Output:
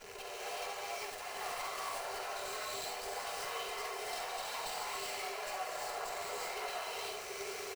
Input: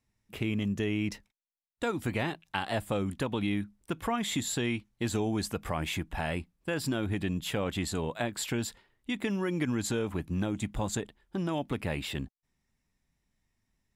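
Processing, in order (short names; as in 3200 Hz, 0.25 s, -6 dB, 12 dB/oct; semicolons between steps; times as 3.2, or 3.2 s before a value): infinite clipping; notches 50/100/150/200/250/300 Hz; expander -23 dBFS; tone controls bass -6 dB, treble 0 dB; notch 3100 Hz, Q 6.3; comb 3 ms, depth 40%; frequency shift +380 Hz; loudspeakers at several distances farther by 34 m -6 dB, 52 m -10 dB; tempo 1.8×; non-linear reverb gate 0.41 s rising, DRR -5.5 dB; running maximum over 3 samples; gain +5.5 dB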